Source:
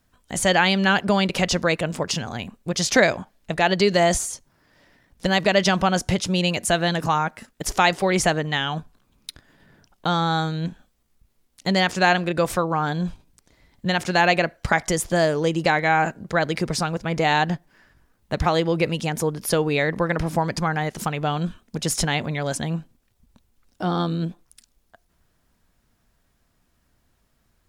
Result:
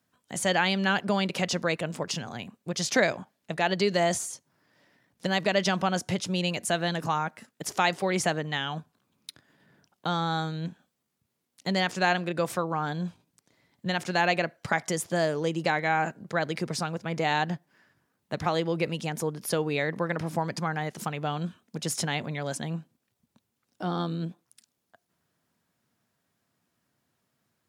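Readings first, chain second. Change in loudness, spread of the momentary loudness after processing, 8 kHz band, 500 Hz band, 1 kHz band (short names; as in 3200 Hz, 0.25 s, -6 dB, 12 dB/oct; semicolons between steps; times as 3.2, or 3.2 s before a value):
-6.5 dB, 12 LU, -6.5 dB, -6.5 dB, -6.5 dB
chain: HPF 110 Hz 24 dB/oct; gain -6.5 dB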